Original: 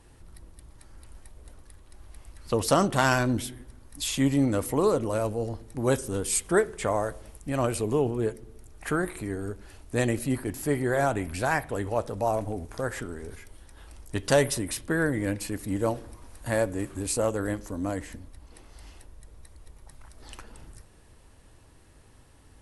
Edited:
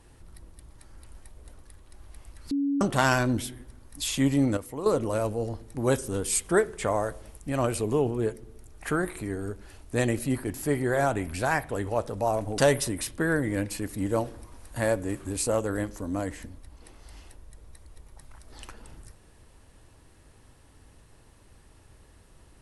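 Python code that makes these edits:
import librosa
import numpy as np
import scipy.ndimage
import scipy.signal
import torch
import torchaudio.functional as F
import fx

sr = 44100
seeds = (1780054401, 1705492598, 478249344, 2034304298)

y = fx.edit(x, sr, fx.bleep(start_s=2.51, length_s=0.3, hz=281.0, db=-23.0),
    fx.clip_gain(start_s=4.57, length_s=0.29, db=-10.0),
    fx.cut(start_s=12.58, length_s=1.7), tone=tone)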